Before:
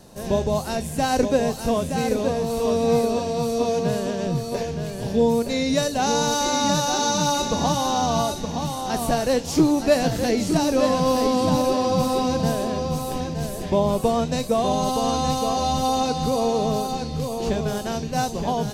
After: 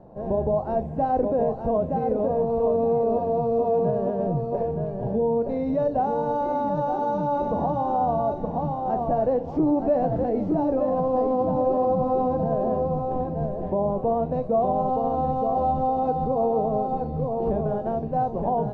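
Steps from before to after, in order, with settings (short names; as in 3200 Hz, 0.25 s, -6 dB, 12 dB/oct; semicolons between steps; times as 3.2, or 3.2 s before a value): limiter -15.5 dBFS, peak gain reduction 7 dB; synth low-pass 740 Hz, resonance Q 1.8; reverb RT60 0.35 s, pre-delay 6 ms, DRR 12.5 dB; gain -2 dB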